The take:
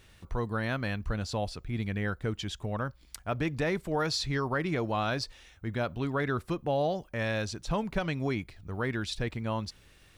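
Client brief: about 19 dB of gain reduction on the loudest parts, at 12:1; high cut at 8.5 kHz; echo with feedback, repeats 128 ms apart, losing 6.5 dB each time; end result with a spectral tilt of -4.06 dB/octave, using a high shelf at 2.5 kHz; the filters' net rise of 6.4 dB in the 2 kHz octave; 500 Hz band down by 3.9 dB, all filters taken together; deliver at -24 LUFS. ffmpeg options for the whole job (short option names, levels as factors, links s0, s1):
-af "lowpass=8500,equalizer=f=500:t=o:g=-5.5,equalizer=f=2000:t=o:g=4.5,highshelf=f=2500:g=9,acompressor=threshold=0.00794:ratio=12,aecho=1:1:128|256|384|512|640|768:0.473|0.222|0.105|0.0491|0.0231|0.0109,volume=11.2"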